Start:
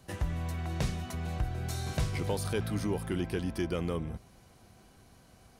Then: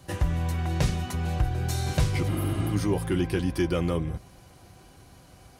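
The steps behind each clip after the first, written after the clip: spectral replace 2.30–2.68 s, 220–10000 Hz after; comb of notches 220 Hz; trim +7.5 dB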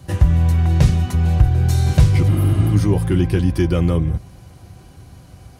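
peaking EQ 88 Hz +10 dB 2.6 oct; trim +3.5 dB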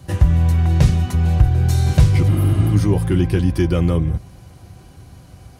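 no audible change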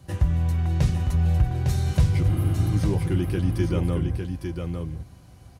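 delay 855 ms -5.5 dB; trim -8 dB

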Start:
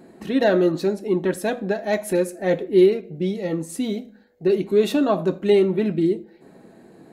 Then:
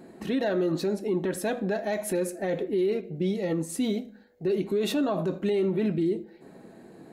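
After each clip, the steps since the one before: peak limiter -18 dBFS, peak gain reduction 12 dB; trim -1 dB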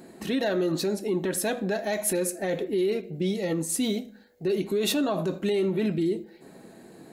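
treble shelf 3.1 kHz +9.5 dB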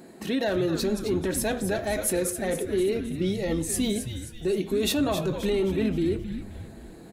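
frequency-shifting echo 264 ms, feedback 48%, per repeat -130 Hz, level -9 dB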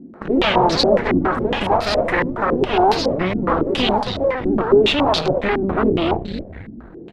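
Chebyshev shaper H 8 -12 dB, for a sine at -11.5 dBFS; ever faster or slower copies 128 ms, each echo +5 st, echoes 3, each echo -6 dB; step-sequenced low-pass 7.2 Hz 260–4500 Hz; trim +3 dB

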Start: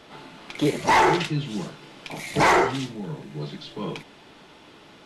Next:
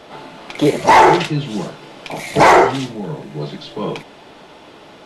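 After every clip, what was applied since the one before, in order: peaking EQ 630 Hz +6.5 dB 1.3 oct; trim +5.5 dB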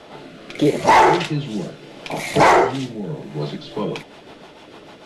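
in parallel at +1 dB: compression, threshold -19 dBFS, peak gain reduction 13 dB; on the sum: rotary cabinet horn 0.75 Hz, later 6.7 Hz, at 3.22 s; trim -5 dB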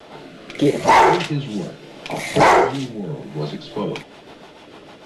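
vibrato 1.2 Hz 40 cents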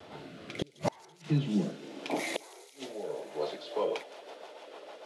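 high-pass sweep 84 Hz -> 530 Hz, 0.41–2.95 s; inverted gate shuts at -8 dBFS, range -36 dB; feedback echo behind a high-pass 166 ms, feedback 81%, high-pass 4.9 kHz, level -11.5 dB; trim -8.5 dB

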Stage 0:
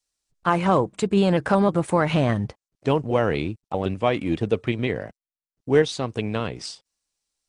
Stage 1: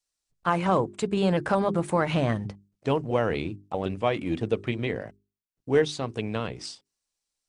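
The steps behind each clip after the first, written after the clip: hum notches 50/100/150/200/250/300/350/400 Hz; trim -3.5 dB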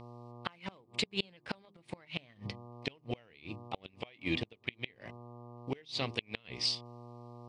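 mains buzz 120 Hz, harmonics 10, -44 dBFS -4 dB/octave; inverted gate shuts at -16 dBFS, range -31 dB; high-order bell 3.2 kHz +15 dB; trim -6 dB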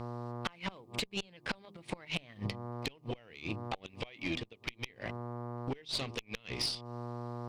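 compression 5:1, threshold -42 dBFS, peak gain reduction 13.5 dB; valve stage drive 36 dB, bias 0.65; trim +12.5 dB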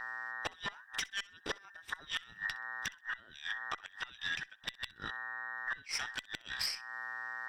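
every band turned upside down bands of 2 kHz; thinning echo 64 ms, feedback 23%, level -22 dB; trim -1.5 dB

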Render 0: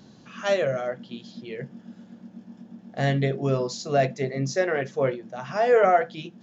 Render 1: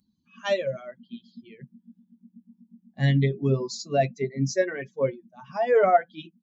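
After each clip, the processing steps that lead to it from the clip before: expander on every frequency bin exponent 2; dynamic bell 1.3 kHz, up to -4 dB, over -37 dBFS, Q 0.98; comb 7.2 ms, depth 34%; trim +2.5 dB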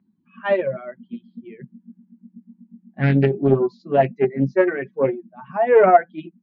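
cabinet simulation 150–2200 Hz, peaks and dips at 180 Hz +3 dB, 360 Hz +7 dB, 520 Hz -3 dB; loudspeaker Doppler distortion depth 0.35 ms; trim +6.5 dB

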